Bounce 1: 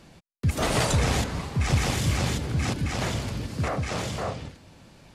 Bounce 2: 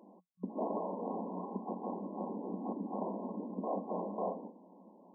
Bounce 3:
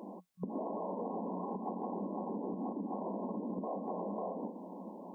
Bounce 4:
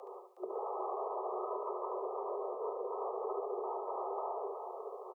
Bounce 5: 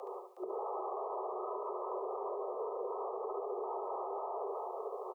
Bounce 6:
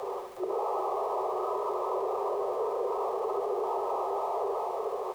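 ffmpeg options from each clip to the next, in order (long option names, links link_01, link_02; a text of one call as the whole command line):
ffmpeg -i in.wav -af "aemphasis=mode=production:type=50fm,acompressor=threshold=-25dB:ratio=6,afftfilt=real='re*between(b*sr/4096,180,1100)':imag='im*between(b*sr/4096,180,1100)':win_size=4096:overlap=0.75,volume=-2.5dB" out.wav
ffmpeg -i in.wav -af "alimiter=level_in=11dB:limit=-24dB:level=0:latency=1:release=114,volume=-11dB,acompressor=threshold=-47dB:ratio=6,volume=11.5dB" out.wav
ffmpeg -i in.wav -filter_complex "[0:a]asplit=2[link_01][link_02];[link_02]aecho=0:1:72|144|216|288:0.562|0.18|0.0576|0.0184[link_03];[link_01][link_03]amix=inputs=2:normalize=0,afreqshift=190,asplit=2[link_04][link_05];[link_05]aecho=0:1:366:0.473[link_06];[link_04][link_06]amix=inputs=2:normalize=0,volume=-2dB" out.wav
ffmpeg -i in.wav -af "alimiter=level_in=11.5dB:limit=-24dB:level=0:latency=1:release=81,volume=-11.5dB,volume=4.5dB" out.wav
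ffmpeg -i in.wav -af "aeval=exprs='val(0)+0.5*0.00224*sgn(val(0))':channel_layout=same,volume=7.5dB" out.wav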